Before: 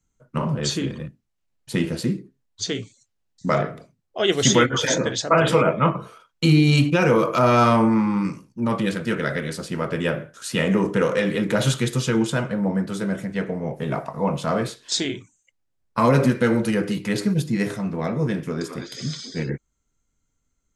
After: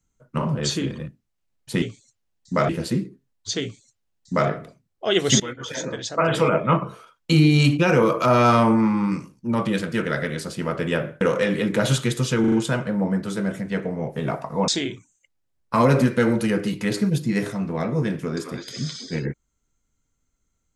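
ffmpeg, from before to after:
ffmpeg -i in.wav -filter_complex "[0:a]asplit=9[link_01][link_02][link_03][link_04][link_05][link_06][link_07][link_08][link_09];[link_01]atrim=end=1.822[link_10];[link_02]atrim=start=2.748:end=3.622[link_11];[link_03]atrim=start=1.818:end=4.53,asetpts=PTS-STARTPTS,afade=type=out:start_time=2.708:duration=0.004:curve=hsin:silence=0.112202[link_12];[link_04]atrim=start=4.53:end=10.342,asetpts=PTS-STARTPTS,afade=type=in:duration=1.31:silence=0.112202[link_13];[link_05]atrim=start=10.968:end=12.202[link_14];[link_06]atrim=start=12.158:end=12.202[link_15];[link_07]atrim=start=12.158:end=12.202[link_16];[link_08]atrim=start=12.158:end=14.322[link_17];[link_09]atrim=start=14.918[link_18];[link_10][link_11]acrossfade=duration=0.004:curve1=hsin:curve2=hsin[link_19];[link_12][link_13]concat=n=2:v=0:a=1[link_20];[link_19][link_20]acrossfade=duration=0.004:curve1=hsin:curve2=hsin[link_21];[link_21][link_14]acrossfade=duration=0.004:curve1=hsin:curve2=hsin[link_22];[link_22][link_15]acrossfade=duration=0.004:curve1=hsin:curve2=hsin[link_23];[link_23][link_16]acrossfade=duration=0.004:curve1=hsin:curve2=hsin[link_24];[link_24][link_17]acrossfade=duration=0.004:curve1=hsin:curve2=hsin[link_25];[link_25][link_18]acrossfade=duration=0.004:curve1=hsin:curve2=hsin" out.wav

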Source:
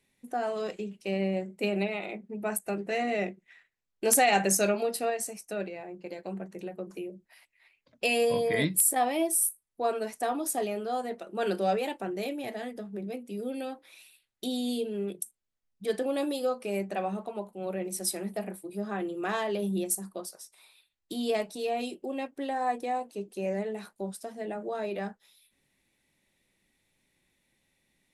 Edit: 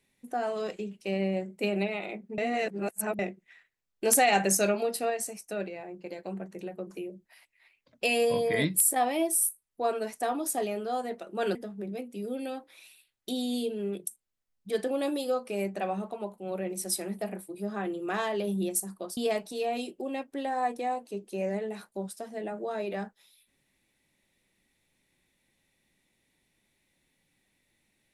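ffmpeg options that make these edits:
ffmpeg -i in.wav -filter_complex "[0:a]asplit=5[link_01][link_02][link_03][link_04][link_05];[link_01]atrim=end=2.382[link_06];[link_02]atrim=start=2.378:end=3.192,asetpts=PTS-STARTPTS,areverse[link_07];[link_03]atrim=start=3.188:end=11.552[link_08];[link_04]atrim=start=12.698:end=20.322[link_09];[link_05]atrim=start=21.208[link_10];[link_06][link_07]acrossfade=duration=0.004:curve1=hsin:curve2=hsin[link_11];[link_11][link_08]acrossfade=duration=0.004:curve1=hsin:curve2=hsin[link_12];[link_12][link_09]acrossfade=duration=0.004:curve1=hsin:curve2=hsin[link_13];[link_13][link_10]acrossfade=duration=0.004:curve1=hsin:curve2=hsin" out.wav

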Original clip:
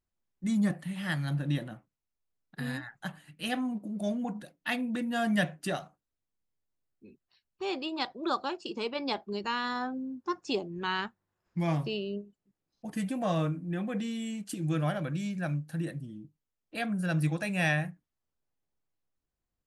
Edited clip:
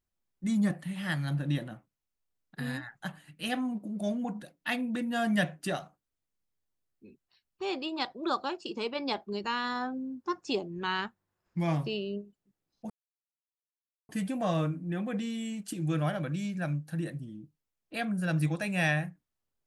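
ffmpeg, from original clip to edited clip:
ffmpeg -i in.wav -filter_complex "[0:a]asplit=2[link_01][link_02];[link_01]atrim=end=12.9,asetpts=PTS-STARTPTS,afade=type=out:start_time=12.896:duration=0.004:curve=hsin,apad=pad_dur=1.19[link_03];[link_02]atrim=start=12.9,asetpts=PTS-STARTPTS,afade=type=in:duration=0.004:curve=hsin[link_04];[link_03][link_04]concat=n=2:v=0:a=1" out.wav

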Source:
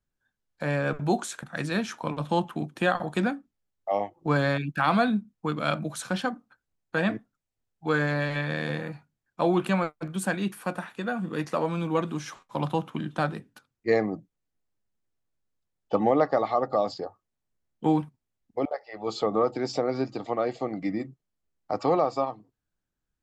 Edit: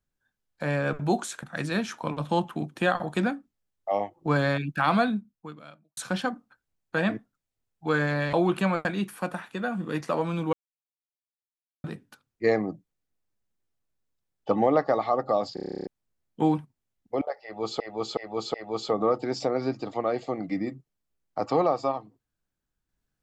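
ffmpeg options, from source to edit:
ffmpeg -i in.wav -filter_complex "[0:a]asplit=20[link_01][link_02][link_03][link_04][link_05][link_06][link_07][link_08][link_09][link_10][link_11][link_12][link_13][link_14][link_15][link_16][link_17][link_18][link_19][link_20];[link_01]atrim=end=5.97,asetpts=PTS-STARTPTS,afade=type=out:start_time=5:duration=0.97:curve=qua[link_21];[link_02]atrim=start=5.97:end=8.332,asetpts=PTS-STARTPTS,afade=type=in:duration=0.004:curve=hsin[link_22];[link_03]atrim=start=9.408:end=9.932[link_23];[link_04]atrim=start=10.288:end=11.97,asetpts=PTS-STARTPTS,afade=type=out:start_time=1.678:duration=0.004:curve=hsin[link_24];[link_05]atrim=start=11.97:end=13.28,asetpts=PTS-STARTPTS,volume=0[link_25];[link_06]atrim=start=13.28:end=17.012,asetpts=PTS-STARTPTS,afade=type=in:duration=0.004:curve=hsin[link_26];[link_07]atrim=start=16.978:end=17.012[link_27];[link_08]atrim=start=16.978:end=17.012[link_28];[link_09]atrim=start=16.978:end=17.012[link_29];[link_10]atrim=start=16.978:end=17.012[link_30];[link_11]atrim=start=16.978:end=17.012[link_31];[link_12]atrim=start=16.978:end=17.012[link_32];[link_13]atrim=start=16.978:end=17.012[link_33];[link_14]atrim=start=16.978:end=17.012[link_34];[link_15]atrim=start=16.978:end=17.012[link_35];[link_16]atrim=start=16.978:end=17.012[link_36];[link_17]atrim=start=17.308:end=19.242[link_37];[link_18]atrim=start=18.868:end=19.242[link_38];[link_19]atrim=start=18.868:end=19.242[link_39];[link_20]atrim=start=18.868[link_40];[link_21][link_22]concat=n=2:v=0:a=1[link_41];[link_41][link_23]acrossfade=duration=0.004:curve1=hsin:curve2=hsin[link_42];[link_24][link_25][link_26]concat=n=3:v=0:a=1[link_43];[link_42][link_43]acrossfade=duration=0.004:curve1=hsin:curve2=hsin[link_44];[link_44][link_27]acrossfade=duration=0.004:curve1=hsin:curve2=hsin[link_45];[link_45][link_28]acrossfade=duration=0.004:curve1=hsin:curve2=hsin[link_46];[link_46][link_29]acrossfade=duration=0.004:curve1=hsin:curve2=hsin[link_47];[link_47][link_30]acrossfade=duration=0.004:curve1=hsin:curve2=hsin[link_48];[link_48][link_31]acrossfade=duration=0.004:curve1=hsin:curve2=hsin[link_49];[link_49][link_32]acrossfade=duration=0.004:curve1=hsin:curve2=hsin[link_50];[link_50][link_33]acrossfade=duration=0.004:curve1=hsin:curve2=hsin[link_51];[link_51][link_34]acrossfade=duration=0.004:curve1=hsin:curve2=hsin[link_52];[link_52][link_35]acrossfade=duration=0.004:curve1=hsin:curve2=hsin[link_53];[link_53][link_36]acrossfade=duration=0.004:curve1=hsin:curve2=hsin[link_54];[link_54][link_37]acrossfade=duration=0.004:curve1=hsin:curve2=hsin[link_55];[link_55][link_38]acrossfade=duration=0.004:curve1=hsin:curve2=hsin[link_56];[link_56][link_39]acrossfade=duration=0.004:curve1=hsin:curve2=hsin[link_57];[link_57][link_40]acrossfade=duration=0.004:curve1=hsin:curve2=hsin" out.wav

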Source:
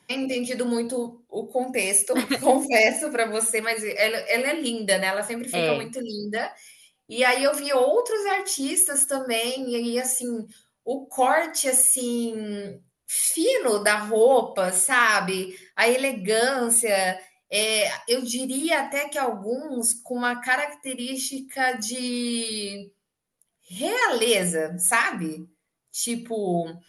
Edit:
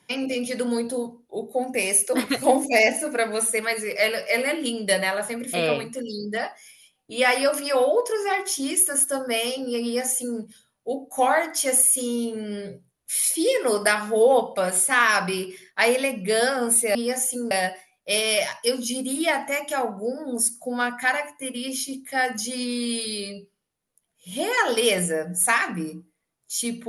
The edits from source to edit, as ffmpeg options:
ffmpeg -i in.wav -filter_complex "[0:a]asplit=3[link_01][link_02][link_03];[link_01]atrim=end=16.952[link_04];[link_02]atrim=start=9.828:end=10.392[link_05];[link_03]atrim=start=16.948[link_06];[link_04][link_05]acrossfade=duration=0.004:curve1=hsin:curve2=hsin[link_07];[link_07][link_06]acrossfade=duration=0.004:curve1=hsin:curve2=hsin" out.wav

